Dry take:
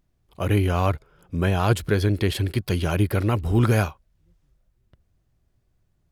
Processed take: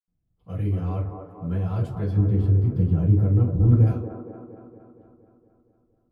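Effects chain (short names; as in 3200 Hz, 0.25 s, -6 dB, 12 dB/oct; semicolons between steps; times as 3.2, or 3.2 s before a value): 2.08–3.79 tilt shelf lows +8 dB, about 870 Hz; band-limited delay 0.233 s, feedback 62%, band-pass 640 Hz, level -4 dB; reverb RT60 0.30 s, pre-delay 76 ms; gain +7 dB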